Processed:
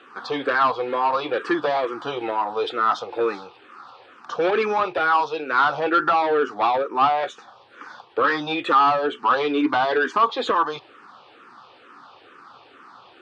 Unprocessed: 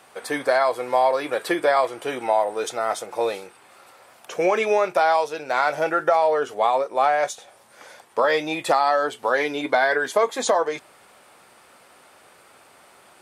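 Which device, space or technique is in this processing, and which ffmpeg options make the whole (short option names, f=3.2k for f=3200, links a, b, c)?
barber-pole phaser into a guitar amplifier: -filter_complex "[0:a]asplit=2[a][b];[b]afreqshift=-2.2[c];[a][c]amix=inputs=2:normalize=1,asoftclip=type=tanh:threshold=-20.5dB,highpass=110,equalizer=f=180:t=q:w=4:g=-5,equalizer=f=290:t=q:w=4:g=4,equalizer=f=620:t=q:w=4:g=-10,equalizer=f=1.2k:t=q:w=4:g=7,equalizer=f=2.1k:t=q:w=4:g=-9,lowpass=f=4.2k:w=0.5412,lowpass=f=4.2k:w=1.3066,volume=7.5dB"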